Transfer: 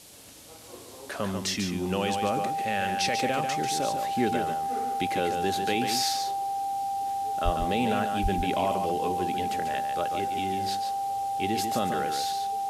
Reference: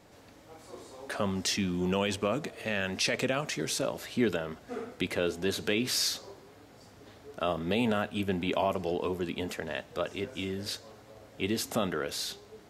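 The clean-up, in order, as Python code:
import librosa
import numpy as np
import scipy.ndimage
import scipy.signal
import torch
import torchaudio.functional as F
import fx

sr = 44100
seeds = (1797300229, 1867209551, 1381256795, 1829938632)

y = fx.notch(x, sr, hz=790.0, q=30.0)
y = fx.highpass(y, sr, hz=140.0, slope=24, at=(7.44, 7.56), fade=0.02)
y = fx.highpass(y, sr, hz=140.0, slope=24, at=(8.22, 8.34), fade=0.02)
y = fx.noise_reduce(y, sr, print_start_s=0.0, print_end_s=0.5, reduce_db=21.0)
y = fx.fix_echo_inverse(y, sr, delay_ms=143, level_db=-6.5)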